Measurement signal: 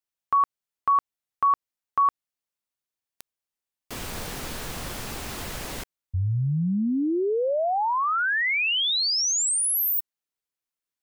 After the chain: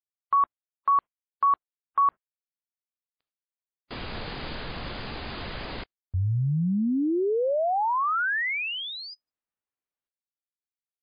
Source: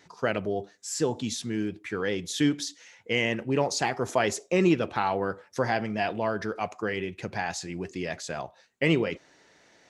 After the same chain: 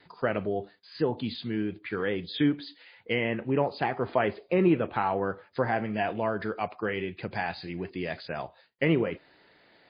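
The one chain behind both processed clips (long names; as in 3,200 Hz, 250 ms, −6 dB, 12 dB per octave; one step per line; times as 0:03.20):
noise gate with hold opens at −56 dBFS, hold 28 ms, range −32 dB
treble cut that deepens with the level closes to 2,000 Hz, closed at −22.5 dBFS
MP3 24 kbit/s 11,025 Hz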